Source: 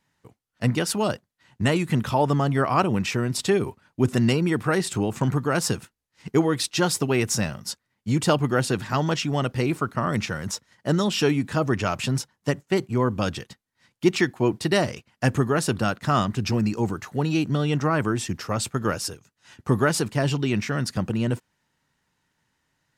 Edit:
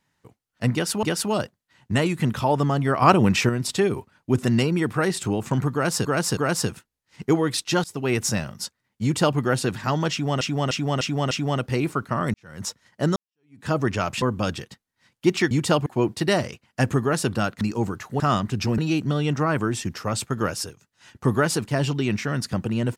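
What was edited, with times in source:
0.73–1.03 s: loop, 2 plays
2.72–3.19 s: gain +5.5 dB
5.43–5.75 s: loop, 3 plays
6.90–7.19 s: fade in, from -23.5 dB
8.09–8.44 s: copy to 14.30 s
9.17–9.47 s: loop, 5 plays
10.20–10.52 s: fade in quadratic
11.02–11.53 s: fade in exponential
12.08–13.01 s: delete
16.05–16.63 s: move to 17.22 s

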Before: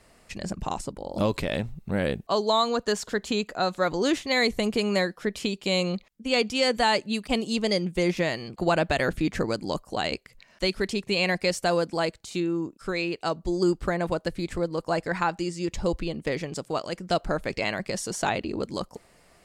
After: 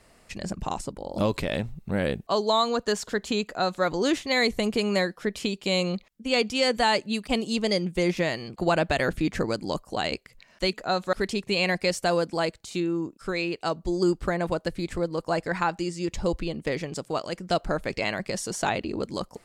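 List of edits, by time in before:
3.44–3.84 s: copy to 10.73 s

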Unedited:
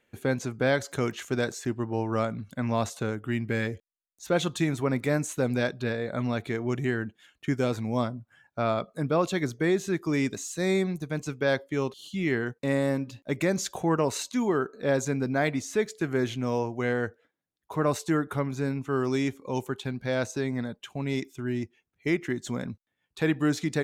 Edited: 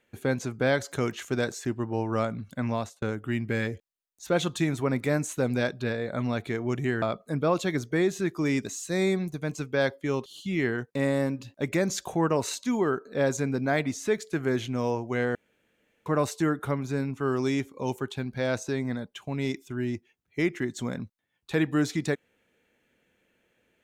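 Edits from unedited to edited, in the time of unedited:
2.67–3.02 s: fade out
7.02–8.70 s: delete
17.03–17.74 s: room tone

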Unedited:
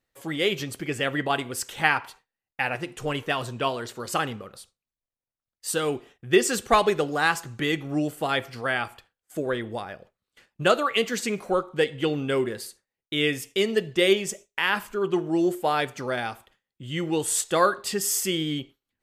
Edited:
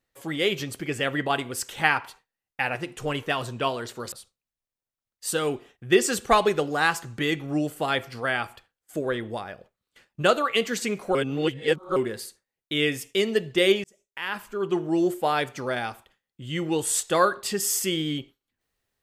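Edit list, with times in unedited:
4.12–4.53 s: delete
11.56–12.37 s: reverse
14.25–15.23 s: fade in

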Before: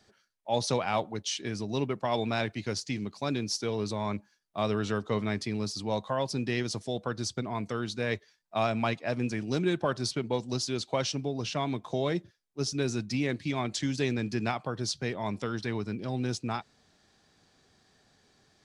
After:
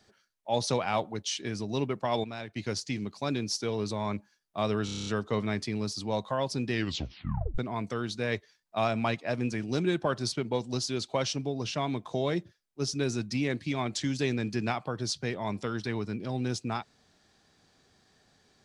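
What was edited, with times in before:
2.24–2.56 s: gain -9.5 dB
4.85 s: stutter 0.03 s, 8 plays
6.51 s: tape stop 0.86 s

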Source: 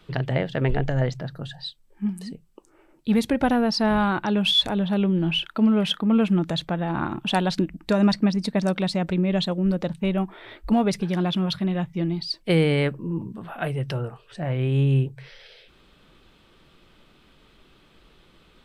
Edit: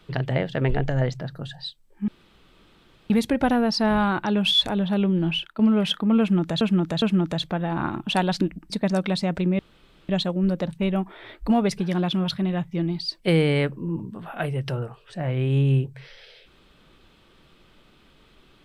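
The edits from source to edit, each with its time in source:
2.08–3.10 s: room tone
5.27–5.59 s: fade out, to -11.5 dB
6.20–6.61 s: loop, 3 plays
7.88–8.42 s: delete
9.31 s: insert room tone 0.50 s

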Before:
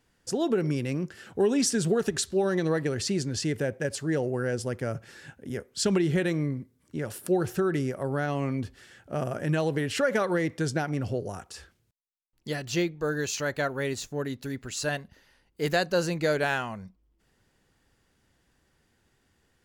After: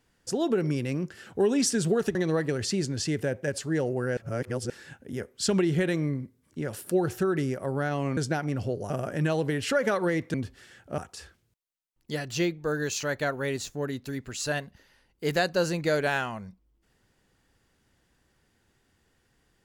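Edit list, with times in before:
2.15–2.52 s: delete
4.54–5.07 s: reverse
8.54–9.18 s: swap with 10.62–11.35 s

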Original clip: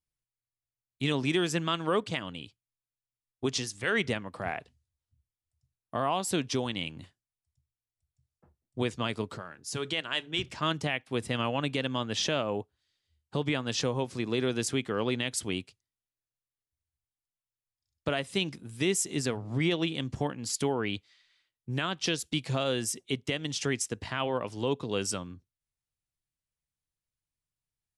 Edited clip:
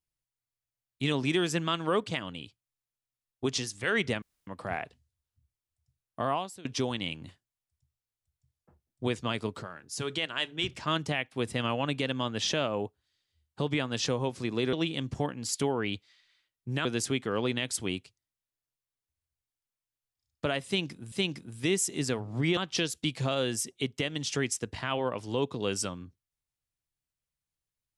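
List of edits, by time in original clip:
4.22 s: insert room tone 0.25 s
6.08–6.40 s: fade out quadratic, to -22.5 dB
18.29–18.75 s: loop, 2 plays
19.74–21.86 s: move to 14.48 s

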